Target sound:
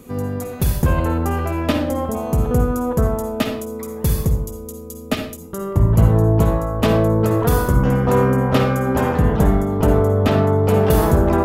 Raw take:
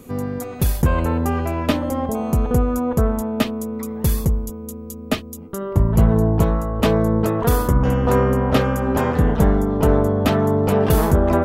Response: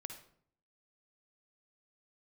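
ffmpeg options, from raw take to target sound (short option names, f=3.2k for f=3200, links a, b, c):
-filter_complex "[0:a]asettb=1/sr,asplit=3[a][b][c];[a]atrim=end=10.164[d];[b]atrim=start=10.16:end=10.64,asetpts=PTS-STARTPTS,afade=t=in:d=0.004:c=qsin,afade=t=out:st=0.476:d=0.004:c=qsin,highshelf=f=6.6k:g=-7.5[e];[c]atrim=start=10.636[f];[d][e]acrossfade=d=0.004:c1=hsin:c2=qsin[g];[g][f]acrossfade=d=0.004:c1=qsin:c2=hsin[h];[1:a]atrim=start_sample=2205,afade=t=out:st=0.26:d=0.01,atrim=end_sample=11907[i];[h][i]afir=irnorm=-1:irlink=0,volume=4.5dB"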